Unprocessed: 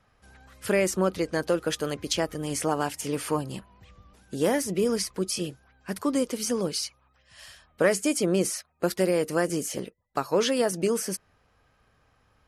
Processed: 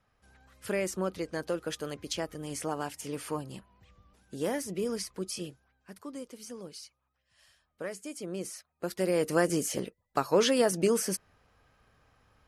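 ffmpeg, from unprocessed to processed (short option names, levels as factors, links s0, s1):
-af "volume=2.51,afade=t=out:st=5.43:d=0.49:silence=0.375837,afade=t=in:st=8.1:d=0.83:silence=0.421697,afade=t=in:st=8.93:d=0.38:silence=0.398107"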